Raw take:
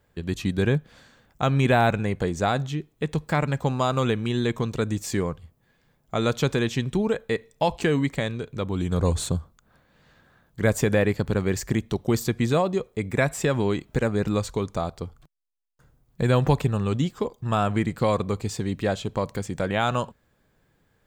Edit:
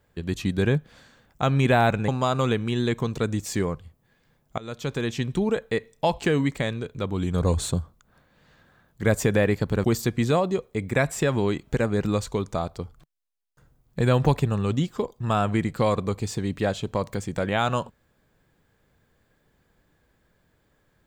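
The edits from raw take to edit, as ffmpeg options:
ffmpeg -i in.wav -filter_complex "[0:a]asplit=4[link_01][link_02][link_03][link_04];[link_01]atrim=end=2.082[link_05];[link_02]atrim=start=3.658:end=6.16,asetpts=PTS-STARTPTS,afade=type=out:start_time=2.498:duration=0.004:curve=hsin:silence=0.0794328[link_06];[link_03]atrim=start=6.16:end=11.422,asetpts=PTS-STARTPTS,afade=type=in:duration=1.01:curve=qsin:silence=0.0794328[link_07];[link_04]atrim=start=12.058[link_08];[link_06][link_07]concat=n=2:v=0:a=1[link_09];[link_05][link_09]acrossfade=duration=0.004:curve1=hsin:curve2=hsin[link_10];[link_10][link_08]acrossfade=duration=0.004:curve1=hsin:curve2=hsin" out.wav

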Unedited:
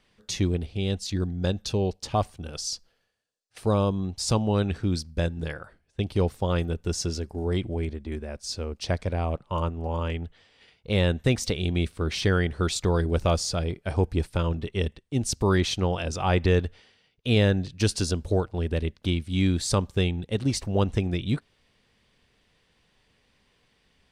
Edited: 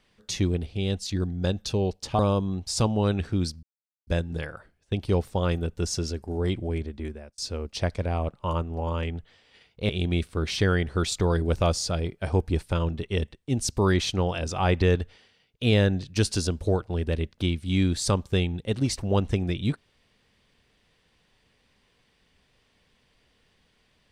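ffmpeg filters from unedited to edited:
ffmpeg -i in.wav -filter_complex "[0:a]asplit=5[link_01][link_02][link_03][link_04][link_05];[link_01]atrim=end=2.192[link_06];[link_02]atrim=start=3.698:end=5.14,asetpts=PTS-STARTPTS,afade=type=out:start_time=1.438:duration=0.004:curve=hsin,apad=pad_dur=0.44[link_07];[link_03]atrim=start=5.14:end=8.45,asetpts=PTS-STARTPTS,afade=type=in:duration=0.004:curve=hsin,afade=type=out:start_time=2.95:duration=0.36[link_08];[link_04]atrim=start=8.45:end=10.962,asetpts=PTS-STARTPTS,afade=type=in:duration=0.004:curve=hsin[link_09];[link_05]atrim=start=11.528[link_10];[link_07][link_08][link_09]concat=n=3:v=0:a=1[link_11];[link_06][link_11]acrossfade=duration=0.004:curve1=hsin:curve2=hsin[link_12];[link_12][link_10]acrossfade=duration=0.004:curve1=hsin:curve2=hsin" out.wav

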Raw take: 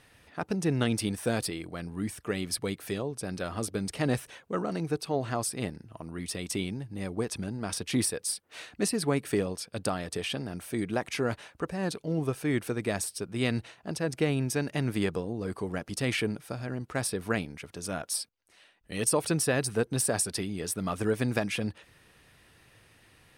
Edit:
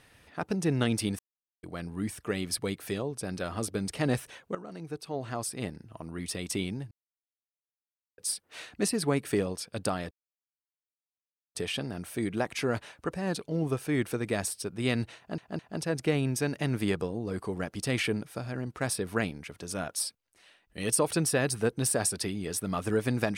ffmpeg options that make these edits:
ffmpeg -i in.wav -filter_complex "[0:a]asplit=9[link_01][link_02][link_03][link_04][link_05][link_06][link_07][link_08][link_09];[link_01]atrim=end=1.19,asetpts=PTS-STARTPTS,afade=type=out:start_time=1.186:duration=0.004:curve=hsin[link_10];[link_02]atrim=start=1.19:end=1.63,asetpts=PTS-STARTPTS,volume=0[link_11];[link_03]atrim=start=1.63:end=4.55,asetpts=PTS-STARTPTS,afade=type=in:duration=0.004:curve=hsin,afade=type=out:start_time=2.916:duration=0.004:curve=hsin:silence=0.199526[link_12];[link_04]atrim=start=4.55:end=6.91,asetpts=PTS-STARTPTS,afade=type=in:duration=1.43:silence=0.199526,afade=type=out:start_time=2.356:duration=0.004:curve=hsin[link_13];[link_05]atrim=start=6.91:end=8.18,asetpts=PTS-STARTPTS,volume=0[link_14];[link_06]atrim=start=8.18:end=10.11,asetpts=PTS-STARTPTS,afade=type=in:duration=0.004:curve=hsin,afade=type=out:start_time=1.926:duration=0.004:curve=hsin,apad=pad_dur=1.44[link_15];[link_07]atrim=start=10.11:end=13.942,asetpts=PTS-STARTPTS,afade=type=in:duration=0.004:curve=hsin[link_16];[link_08]atrim=start=13.728:end=13.942[link_17];[link_09]atrim=start=13.728[link_18];[link_10][link_11][link_12][link_13][link_14][link_15][link_16]concat=n=7:v=0:a=1[link_19];[link_19][link_17]acrossfade=duration=0.004:curve1=hsin:curve2=hsin[link_20];[link_20][link_18]acrossfade=duration=0.004:curve1=hsin:curve2=hsin" out.wav

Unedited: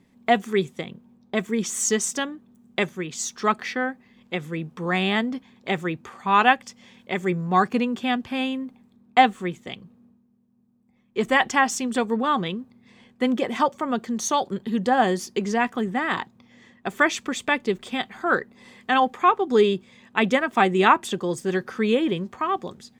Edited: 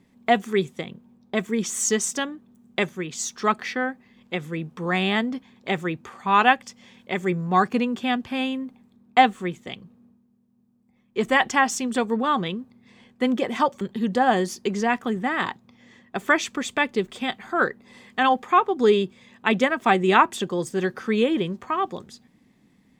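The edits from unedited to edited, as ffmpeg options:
ffmpeg -i in.wav -filter_complex "[0:a]asplit=2[link_01][link_02];[link_01]atrim=end=13.812[link_03];[link_02]atrim=start=14.518[link_04];[link_03][link_04]acrossfade=duration=0.004:curve1=hsin:curve2=hsin" out.wav

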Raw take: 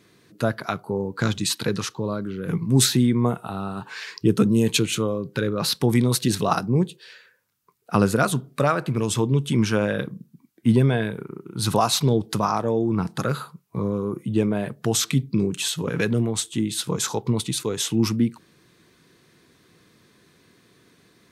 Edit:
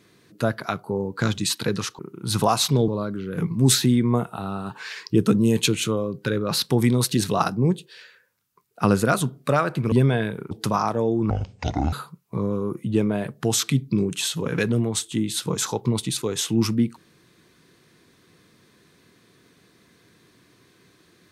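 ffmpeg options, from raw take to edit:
ffmpeg -i in.wav -filter_complex "[0:a]asplit=7[link_01][link_02][link_03][link_04][link_05][link_06][link_07];[link_01]atrim=end=1.992[link_08];[link_02]atrim=start=11.308:end=12.202[link_09];[link_03]atrim=start=1.988:end=9.032[link_10];[link_04]atrim=start=10.718:end=11.312[link_11];[link_05]atrim=start=12.198:end=12.994[link_12];[link_06]atrim=start=12.99:end=13.34,asetpts=PTS-STARTPTS,asetrate=24696,aresample=44100,atrim=end_sample=27562,asetpts=PTS-STARTPTS[link_13];[link_07]atrim=start=13.336[link_14];[link_08][link_09]acrossfade=duration=0.004:curve1=hsin:curve2=hsin[link_15];[link_15][link_10]acrossfade=duration=0.004:curve1=hsin:curve2=hsin[link_16];[link_16][link_11]acrossfade=duration=0.004:curve1=hsin:curve2=hsin[link_17];[link_17][link_12]acrossfade=duration=0.004:curve1=hsin:curve2=hsin[link_18];[link_18][link_13]acrossfade=duration=0.004:curve1=hsin:curve2=hsin[link_19];[link_19][link_14]acrossfade=duration=0.004:curve1=hsin:curve2=hsin" out.wav

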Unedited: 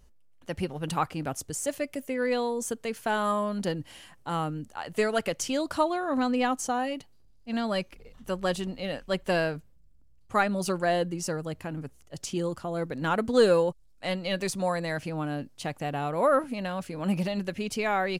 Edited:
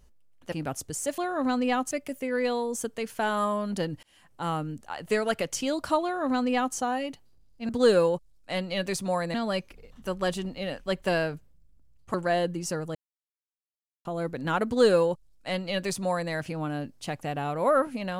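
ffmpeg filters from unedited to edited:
ffmpeg -i in.wav -filter_complex "[0:a]asplit=10[link_01][link_02][link_03][link_04][link_05][link_06][link_07][link_08][link_09][link_10];[link_01]atrim=end=0.522[link_11];[link_02]atrim=start=1.118:end=1.782[link_12];[link_03]atrim=start=5.898:end=6.632[link_13];[link_04]atrim=start=1.778:end=3.9,asetpts=PTS-STARTPTS,afade=type=out:start_time=2.118:duration=0.004:curve=hsin[link_14];[link_05]atrim=start=3.9:end=7.562,asetpts=PTS-STARTPTS,afade=type=in:duration=0.41[link_15];[link_06]atrim=start=13.228:end=14.882[link_16];[link_07]atrim=start=7.558:end=10.362[link_17];[link_08]atrim=start=10.708:end=11.52,asetpts=PTS-STARTPTS,afade=type=out:start_time=0.808:duration=0.004:curve=hsin[link_18];[link_09]atrim=start=11.52:end=12.62,asetpts=PTS-STARTPTS,volume=0[link_19];[link_10]atrim=start=12.62,asetpts=PTS-STARTPTS,afade=type=in:duration=0.004:curve=hsin[link_20];[link_11][link_12]acrossfade=duration=0.004:curve1=hsin:curve2=hsin[link_21];[link_21][link_13]acrossfade=duration=0.004:curve1=hsin:curve2=hsin[link_22];[link_14][link_15]concat=n=2:v=0:a=1[link_23];[link_22][link_23]acrossfade=duration=0.004:curve1=hsin:curve2=hsin[link_24];[link_24][link_16]acrossfade=duration=0.004:curve1=hsin:curve2=hsin[link_25];[link_25][link_17]acrossfade=duration=0.004:curve1=hsin:curve2=hsin[link_26];[link_18][link_19][link_20]concat=n=3:v=0:a=1[link_27];[link_26][link_27]acrossfade=duration=0.004:curve1=hsin:curve2=hsin" out.wav

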